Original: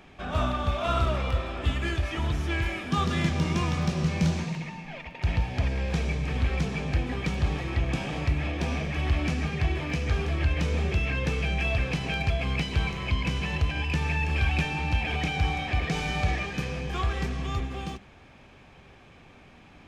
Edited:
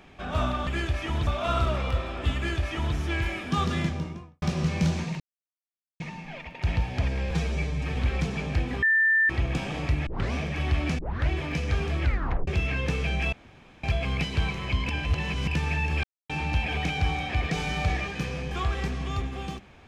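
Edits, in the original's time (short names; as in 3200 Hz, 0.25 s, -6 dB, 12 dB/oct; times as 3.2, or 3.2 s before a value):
1.76–2.36 copy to 0.67
3.04–3.82 studio fade out
4.6 insert silence 0.80 s
5.91–6.34 stretch 1.5×
7.21–7.68 bleep 1780 Hz -18 dBFS
8.45 tape start 0.26 s
9.37 tape start 0.31 s
10.42 tape stop 0.44 s
11.71–12.22 room tone
13.28–13.86 reverse
14.42–14.68 mute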